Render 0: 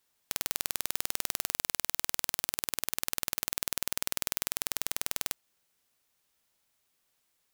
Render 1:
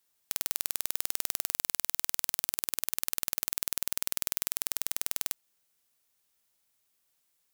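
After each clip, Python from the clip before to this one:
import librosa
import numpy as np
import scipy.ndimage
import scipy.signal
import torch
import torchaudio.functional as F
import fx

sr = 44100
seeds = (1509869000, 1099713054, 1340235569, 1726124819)

y = fx.high_shelf(x, sr, hz=5700.0, db=6.5)
y = y * librosa.db_to_amplitude(-4.0)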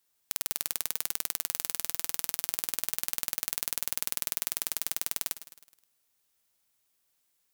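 y = fx.echo_feedback(x, sr, ms=105, feedback_pct=53, wet_db=-14.0)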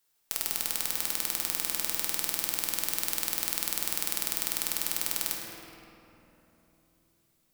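y = fx.room_shoebox(x, sr, seeds[0], volume_m3=180.0, walls='hard', distance_m=0.62)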